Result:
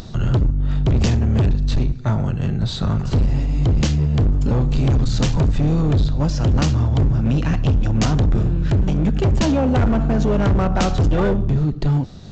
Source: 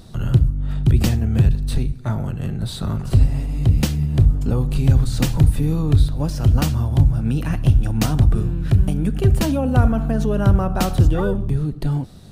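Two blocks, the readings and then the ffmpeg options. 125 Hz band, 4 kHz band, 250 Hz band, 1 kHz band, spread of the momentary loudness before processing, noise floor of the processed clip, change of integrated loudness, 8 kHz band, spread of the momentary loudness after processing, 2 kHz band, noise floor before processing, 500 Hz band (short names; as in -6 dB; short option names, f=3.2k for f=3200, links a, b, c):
-0.5 dB, +2.0 dB, +2.0 dB, +2.5 dB, 7 LU, -28 dBFS, 0.0 dB, -0.5 dB, 3 LU, +2.0 dB, -32 dBFS, +2.5 dB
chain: -af "acompressor=mode=upward:threshold=-34dB:ratio=2.5,aresample=16000,asoftclip=type=hard:threshold=-17dB,aresample=44100,volume=4dB"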